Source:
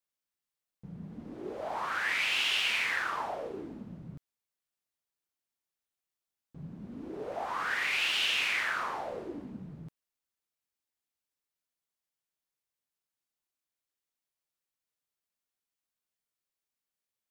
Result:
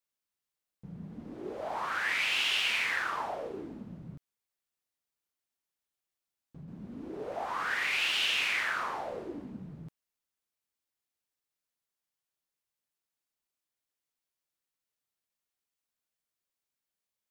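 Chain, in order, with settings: 4.14–6.68 s: compression, threshold -44 dBFS, peak gain reduction 5.5 dB

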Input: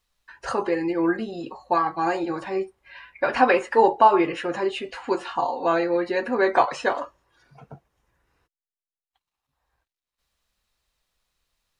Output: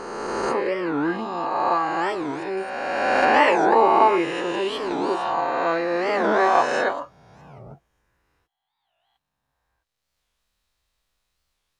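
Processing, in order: reverse spectral sustain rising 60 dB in 2.28 s; 2.57–3.25 s: treble shelf 4.7 kHz +9.5 dB; warped record 45 rpm, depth 250 cents; trim -3.5 dB

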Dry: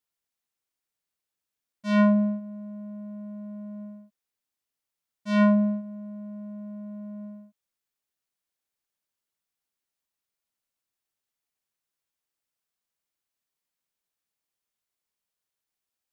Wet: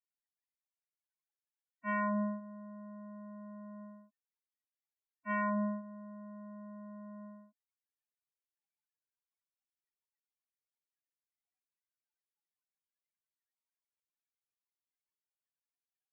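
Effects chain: high-pass 340 Hz 6 dB/octave; loudest bins only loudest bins 16; peak limiter -22 dBFS, peak gain reduction 9.5 dB; resonant high shelf 2.5 kHz -13 dB, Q 1.5; static phaser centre 860 Hz, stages 8; trim +5 dB

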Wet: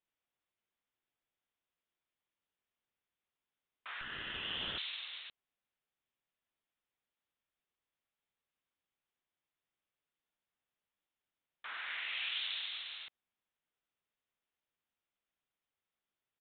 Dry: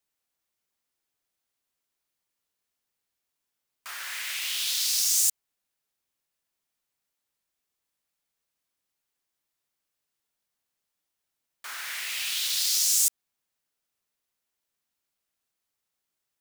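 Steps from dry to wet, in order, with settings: 4.01–4.78 s: comb filter that takes the minimum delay 0.65 ms; vibrato 7.9 Hz 33 cents; resampled via 8 kHz; trim -4.5 dB

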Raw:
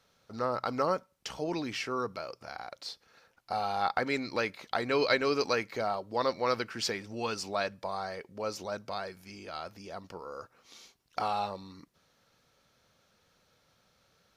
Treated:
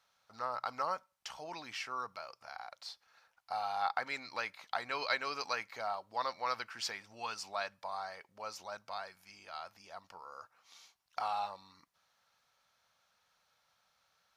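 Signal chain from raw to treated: resonant low shelf 570 Hz -11.5 dB, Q 1.5; trim -5.5 dB

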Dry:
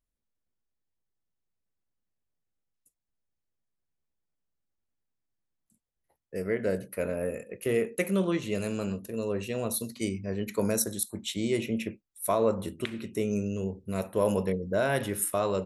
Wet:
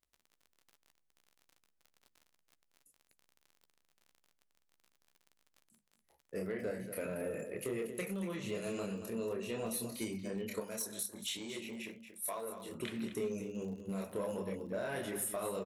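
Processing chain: chorus voices 6, 1.1 Hz, delay 28 ms, depth 3.2 ms; compression 6:1, threshold -36 dBFS, peak gain reduction 14 dB; hum notches 50/100/150/200 Hz; delay 232 ms -11 dB; saturation -31 dBFS, distortion -20 dB; 10.60–12.72 s: bass shelf 440 Hz -10.5 dB; crackle 42 per s -51 dBFS; bass shelf 71 Hz -7 dB; doubling 14 ms -13.5 dB; trim +2.5 dB

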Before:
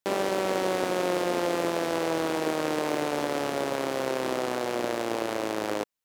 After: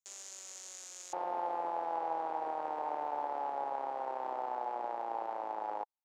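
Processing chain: band-pass filter 6.8 kHz, Q 7.7, from 1.13 s 840 Hz; trim +3.5 dB

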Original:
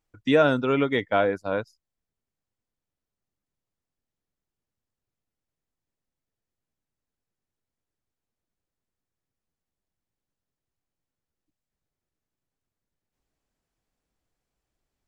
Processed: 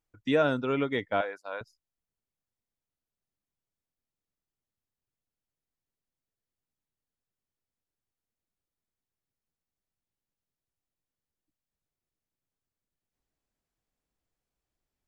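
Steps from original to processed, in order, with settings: 1.21–1.61 s: high-pass 730 Hz 12 dB/octave; trim -5.5 dB

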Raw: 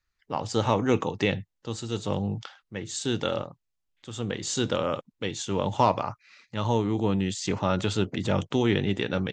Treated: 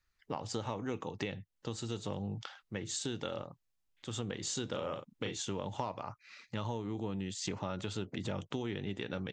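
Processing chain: compression 6:1, threshold -35 dBFS, peak gain reduction 18 dB; 4.70–5.37 s: doubling 37 ms -5.5 dB

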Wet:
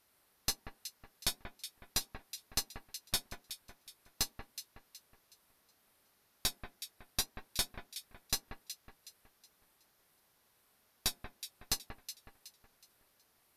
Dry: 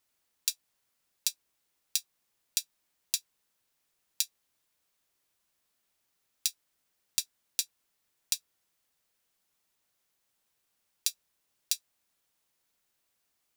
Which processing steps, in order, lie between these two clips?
valve stage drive 32 dB, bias 0.45; peaking EQ 7.4 kHz -10 dB 0.78 oct; on a send at -13.5 dB: reverberation RT60 0.25 s, pre-delay 3 ms; on the sum: wow and flutter 120 cents; brick-wall FIR low-pass 14 kHz; echo whose repeats swap between lows and highs 185 ms, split 2.2 kHz, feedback 59%, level -7 dB; in parallel at -9 dB: one-sided clip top -49 dBFS; on the sum: peaking EQ 2.8 kHz -4.5 dB 1.2 oct; trim +10 dB

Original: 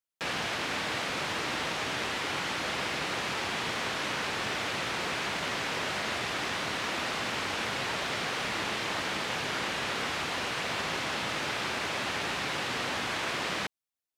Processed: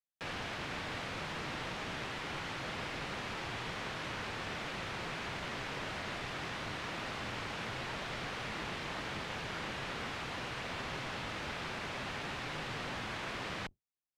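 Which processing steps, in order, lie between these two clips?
octave divider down 1 oct, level +2 dB; treble shelf 5.2 kHz -7.5 dB; trim -7.5 dB

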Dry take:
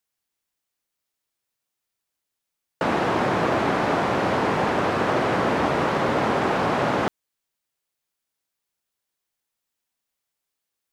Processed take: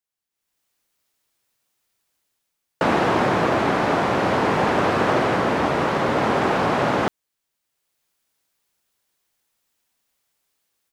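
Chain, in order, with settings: level rider gain up to 16 dB; trim -7 dB

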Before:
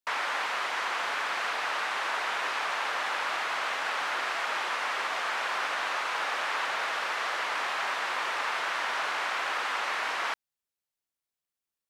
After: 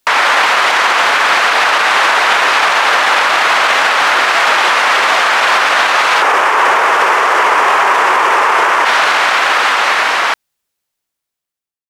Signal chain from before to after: fade out at the end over 3.52 s; 6.22–8.85 s: fifteen-band graphic EQ 400 Hz +9 dB, 1 kHz +6 dB, 4 kHz -8 dB; loudness maximiser +26 dB; trim -1 dB

